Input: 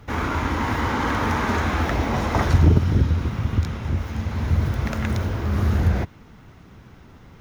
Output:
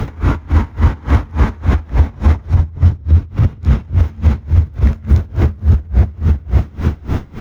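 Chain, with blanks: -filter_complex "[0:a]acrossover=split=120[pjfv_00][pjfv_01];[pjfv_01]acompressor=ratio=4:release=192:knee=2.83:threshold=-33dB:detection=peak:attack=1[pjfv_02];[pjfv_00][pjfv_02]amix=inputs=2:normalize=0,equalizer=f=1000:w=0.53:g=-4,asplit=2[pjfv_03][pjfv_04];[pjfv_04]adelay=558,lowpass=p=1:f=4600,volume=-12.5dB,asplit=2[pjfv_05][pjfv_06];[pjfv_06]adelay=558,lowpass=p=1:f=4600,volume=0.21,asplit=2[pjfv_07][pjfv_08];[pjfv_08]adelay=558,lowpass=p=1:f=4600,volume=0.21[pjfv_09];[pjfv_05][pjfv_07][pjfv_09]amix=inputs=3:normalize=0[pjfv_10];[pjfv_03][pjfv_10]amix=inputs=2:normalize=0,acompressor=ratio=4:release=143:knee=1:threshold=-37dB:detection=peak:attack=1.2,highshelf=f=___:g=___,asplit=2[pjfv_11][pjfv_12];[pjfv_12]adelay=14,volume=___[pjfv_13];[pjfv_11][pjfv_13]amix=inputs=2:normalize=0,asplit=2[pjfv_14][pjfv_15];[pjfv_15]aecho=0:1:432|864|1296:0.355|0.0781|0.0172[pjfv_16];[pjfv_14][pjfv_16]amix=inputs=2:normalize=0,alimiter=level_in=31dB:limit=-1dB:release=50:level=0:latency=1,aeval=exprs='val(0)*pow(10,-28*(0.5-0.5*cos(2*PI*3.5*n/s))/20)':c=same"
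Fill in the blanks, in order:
2200, -9.5, -11dB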